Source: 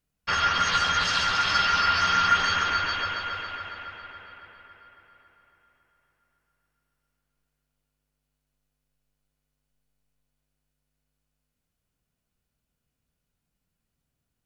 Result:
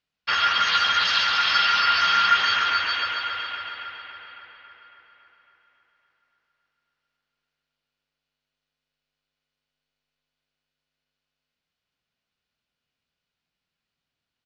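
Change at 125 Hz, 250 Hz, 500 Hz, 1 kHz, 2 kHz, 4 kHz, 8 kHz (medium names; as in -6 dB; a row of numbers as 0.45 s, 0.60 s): under -10 dB, -7.5 dB, -3.0 dB, +1.5 dB, +3.0 dB, +5.0 dB, -4.0 dB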